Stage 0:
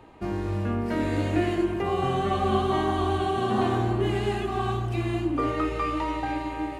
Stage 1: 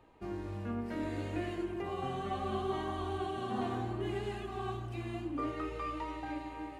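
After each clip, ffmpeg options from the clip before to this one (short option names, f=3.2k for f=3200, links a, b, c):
-af "flanger=delay=1.6:depth=2.8:regen=70:speed=0.68:shape=triangular,volume=-7dB"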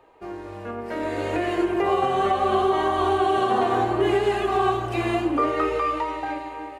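-af "firequalizer=gain_entry='entry(230,0);entry(420,13);entry(3400,8)':delay=0.05:min_phase=1,alimiter=limit=-21.5dB:level=0:latency=1:release=370,dynaudnorm=f=220:g=11:m=12.5dB,volume=-3dB"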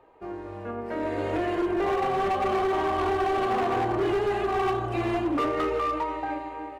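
-af "highshelf=f=2.8k:g=-10,asoftclip=type=hard:threshold=-21dB,volume=-1dB"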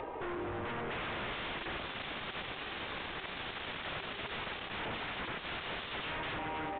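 -af "acompressor=mode=upward:threshold=-30dB:ratio=2.5,aeval=exprs='0.0188*(abs(mod(val(0)/0.0188+3,4)-2)-1)':c=same,volume=1dB" -ar 8000 -c:a pcm_alaw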